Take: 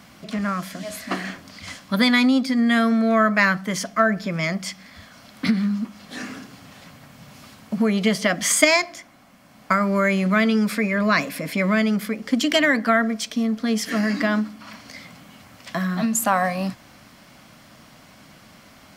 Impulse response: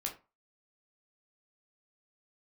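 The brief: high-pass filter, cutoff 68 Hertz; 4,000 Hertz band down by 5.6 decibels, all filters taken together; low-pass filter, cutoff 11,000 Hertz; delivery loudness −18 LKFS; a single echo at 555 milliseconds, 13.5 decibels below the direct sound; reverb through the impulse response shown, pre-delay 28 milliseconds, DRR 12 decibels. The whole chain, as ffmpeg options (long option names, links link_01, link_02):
-filter_complex "[0:a]highpass=68,lowpass=11000,equalizer=frequency=4000:width_type=o:gain=-7.5,aecho=1:1:555:0.211,asplit=2[link_01][link_02];[1:a]atrim=start_sample=2205,adelay=28[link_03];[link_02][link_03]afir=irnorm=-1:irlink=0,volume=-12.5dB[link_04];[link_01][link_04]amix=inputs=2:normalize=0,volume=3.5dB"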